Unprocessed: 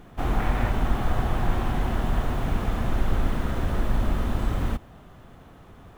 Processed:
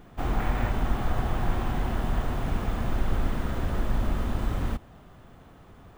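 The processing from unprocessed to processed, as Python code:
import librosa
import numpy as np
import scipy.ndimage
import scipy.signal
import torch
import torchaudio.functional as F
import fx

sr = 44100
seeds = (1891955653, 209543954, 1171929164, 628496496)

y = np.repeat(x[::2], 2)[:len(x)]
y = y * 10.0 ** (-2.5 / 20.0)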